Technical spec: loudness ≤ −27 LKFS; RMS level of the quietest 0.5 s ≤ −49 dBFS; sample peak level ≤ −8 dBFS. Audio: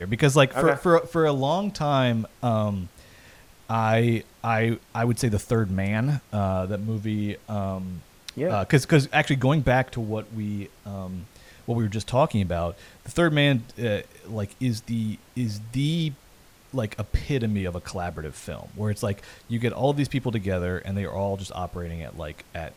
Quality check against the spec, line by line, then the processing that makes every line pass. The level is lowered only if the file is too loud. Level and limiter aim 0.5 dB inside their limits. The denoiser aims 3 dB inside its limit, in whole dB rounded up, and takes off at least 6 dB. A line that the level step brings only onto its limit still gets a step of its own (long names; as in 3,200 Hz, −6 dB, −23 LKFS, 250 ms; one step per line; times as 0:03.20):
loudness −25.5 LKFS: out of spec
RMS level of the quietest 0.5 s −53 dBFS: in spec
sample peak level −4.5 dBFS: out of spec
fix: level −2 dB
brickwall limiter −8.5 dBFS